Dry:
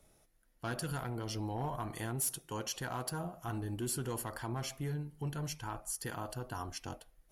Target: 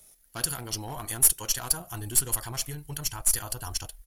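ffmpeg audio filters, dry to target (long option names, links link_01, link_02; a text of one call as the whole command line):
ffmpeg -i in.wav -af "crystalizer=i=6:c=0,atempo=1.8,aeval=exprs='0.473*(cos(1*acos(clip(val(0)/0.473,-1,1)))-cos(1*PI/2))+0.0596*(cos(2*acos(clip(val(0)/0.473,-1,1)))-cos(2*PI/2))+0.0211*(cos(8*acos(clip(val(0)/0.473,-1,1)))-cos(8*PI/2))':channel_layout=same,asubboost=boost=7:cutoff=81" out.wav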